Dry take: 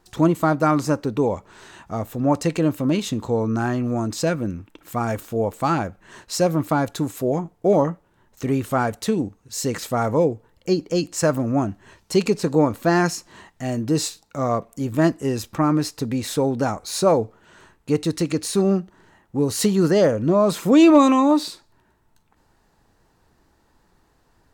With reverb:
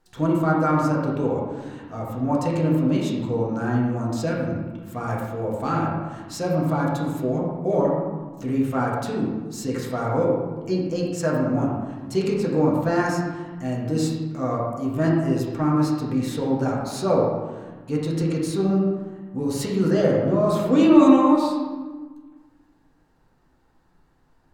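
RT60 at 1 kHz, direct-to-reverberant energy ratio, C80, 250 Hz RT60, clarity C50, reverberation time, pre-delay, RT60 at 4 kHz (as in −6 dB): 1.4 s, −4.5 dB, 2.5 dB, 1.9 s, 0.5 dB, 1.4 s, 4 ms, 0.80 s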